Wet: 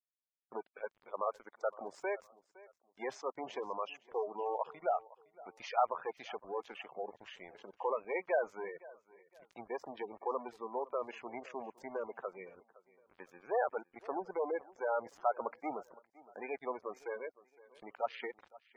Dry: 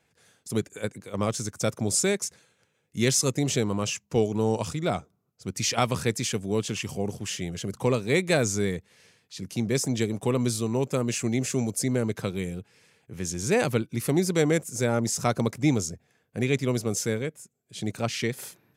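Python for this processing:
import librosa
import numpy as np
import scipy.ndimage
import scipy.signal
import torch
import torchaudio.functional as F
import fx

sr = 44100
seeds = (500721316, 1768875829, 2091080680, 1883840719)

p1 = fx.add_hum(x, sr, base_hz=60, snr_db=18)
p2 = fx.leveller(p1, sr, passes=2)
p3 = fx.ladder_bandpass(p2, sr, hz=990.0, resonance_pct=30)
p4 = np.sign(p3) * np.maximum(np.abs(p3) - 10.0 ** (-53.0 / 20.0), 0.0)
p5 = fx.spec_gate(p4, sr, threshold_db=-15, keep='strong')
p6 = p5 + fx.echo_feedback(p5, sr, ms=513, feedback_pct=33, wet_db=-21.0, dry=0)
y = p6 * 10.0 ** (2.5 / 20.0)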